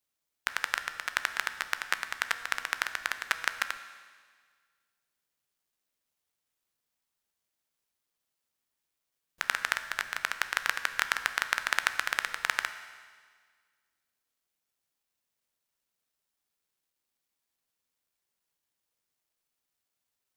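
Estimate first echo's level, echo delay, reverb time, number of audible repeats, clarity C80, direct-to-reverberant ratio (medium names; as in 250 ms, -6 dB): no echo, no echo, 1.7 s, no echo, 12.5 dB, 9.5 dB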